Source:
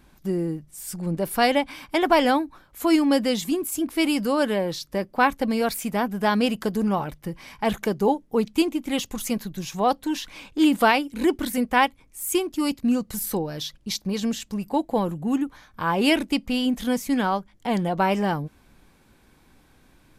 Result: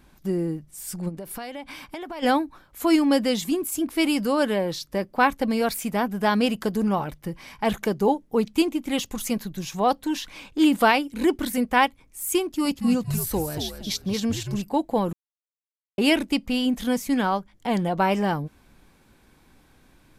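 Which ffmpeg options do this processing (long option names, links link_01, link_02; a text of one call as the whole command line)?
ffmpeg -i in.wav -filter_complex "[0:a]asplit=3[link_01][link_02][link_03];[link_01]afade=type=out:start_time=1.08:duration=0.02[link_04];[link_02]acompressor=threshold=-31dB:ratio=16:attack=3.2:release=140:knee=1:detection=peak,afade=type=in:start_time=1.08:duration=0.02,afade=type=out:start_time=2.22:duration=0.02[link_05];[link_03]afade=type=in:start_time=2.22:duration=0.02[link_06];[link_04][link_05][link_06]amix=inputs=3:normalize=0,asettb=1/sr,asplit=3[link_07][link_08][link_09];[link_07]atrim=end=12.424[link_10];[link_08]atrim=start=12.42:end=14.62,asetpts=PTS-STARTPTS,afade=type=in:duration=0.004:curve=qsin,afade=type=out:start_time=2.196:duration=0.004:curve=qsin,asplit=5[link_11][link_12][link_13][link_14][link_15];[link_12]adelay=231,afreqshift=-94,volume=-7dB[link_16];[link_13]adelay=462,afreqshift=-188,volume=-17.2dB[link_17];[link_14]adelay=693,afreqshift=-282,volume=-27.3dB[link_18];[link_15]adelay=924,afreqshift=-376,volume=-37.5dB[link_19];[link_11][link_16][link_17][link_18][link_19]amix=inputs=5:normalize=0,atrim=end_sample=97020[link_20];[link_09]atrim=start=14.616[link_21];[link_10][link_20]acrossfade=duration=0.004:curve1=hsin:curve2=qsin[link_22];[link_22][link_21]acrossfade=duration=0.004:curve1=qsin:curve2=hsin,asplit=3[link_23][link_24][link_25];[link_23]atrim=end=15.13,asetpts=PTS-STARTPTS,afade=type=out:start_time=15.126:duration=0.004:curve=hsin[link_26];[link_24]atrim=start=15.13:end=15.98,asetpts=PTS-STARTPTS,volume=0[link_27];[link_25]atrim=start=15.98,asetpts=PTS-STARTPTS,afade=type=in:duration=0.004:curve=hsin[link_28];[link_26][link_27][link_28]concat=n=3:v=0:a=1" out.wav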